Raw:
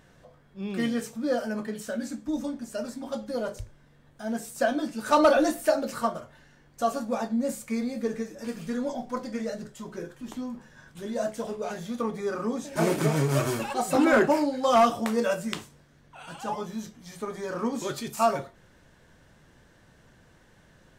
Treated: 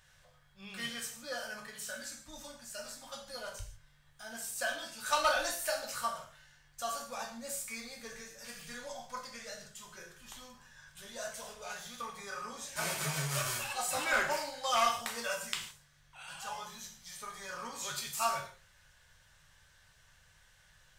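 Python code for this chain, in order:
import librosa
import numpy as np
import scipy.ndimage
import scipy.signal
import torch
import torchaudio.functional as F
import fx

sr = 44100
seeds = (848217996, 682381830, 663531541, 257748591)

y = fx.tone_stack(x, sr, knobs='10-0-10')
y = fx.rev_gated(y, sr, seeds[0], gate_ms=190, shape='falling', drr_db=1.5)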